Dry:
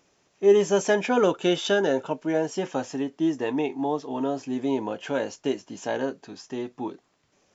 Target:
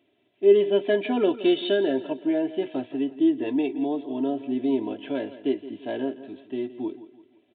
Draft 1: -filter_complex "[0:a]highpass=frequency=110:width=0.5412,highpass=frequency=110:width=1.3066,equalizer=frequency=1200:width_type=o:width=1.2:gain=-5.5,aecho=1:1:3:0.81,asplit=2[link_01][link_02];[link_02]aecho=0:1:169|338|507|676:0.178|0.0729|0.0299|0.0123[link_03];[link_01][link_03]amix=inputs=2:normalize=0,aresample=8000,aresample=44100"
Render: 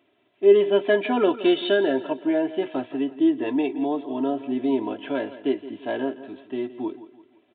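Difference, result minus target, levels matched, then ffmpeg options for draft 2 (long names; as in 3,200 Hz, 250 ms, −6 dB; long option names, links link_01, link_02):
1,000 Hz band +4.0 dB
-filter_complex "[0:a]highpass=frequency=110:width=0.5412,highpass=frequency=110:width=1.3066,equalizer=frequency=1200:width_type=o:width=1.2:gain=-16,aecho=1:1:3:0.81,asplit=2[link_01][link_02];[link_02]aecho=0:1:169|338|507|676:0.178|0.0729|0.0299|0.0123[link_03];[link_01][link_03]amix=inputs=2:normalize=0,aresample=8000,aresample=44100"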